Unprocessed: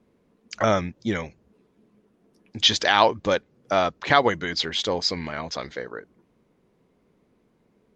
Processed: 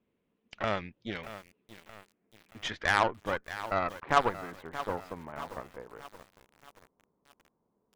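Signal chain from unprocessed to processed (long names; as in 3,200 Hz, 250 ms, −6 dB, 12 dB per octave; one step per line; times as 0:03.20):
low-pass filter sweep 3,000 Hz → 1,000 Hz, 0:01.44–0:04.51
harmonic generator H 3 −14 dB, 6 −42 dB, 8 −25 dB, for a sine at 0.5 dBFS
feedback echo at a low word length 627 ms, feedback 55%, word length 6 bits, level −12.5 dB
level −6.5 dB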